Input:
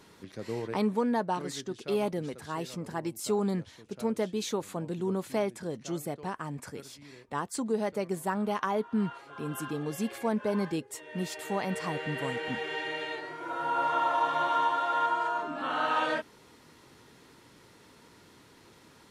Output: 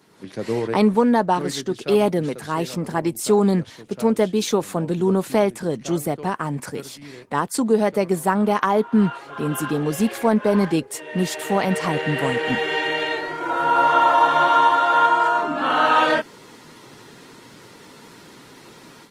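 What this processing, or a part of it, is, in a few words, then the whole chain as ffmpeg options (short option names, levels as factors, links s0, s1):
video call: -af "highpass=f=110:w=0.5412,highpass=f=110:w=1.3066,dynaudnorm=f=140:g=3:m=3.98" -ar 48000 -c:a libopus -b:a 20k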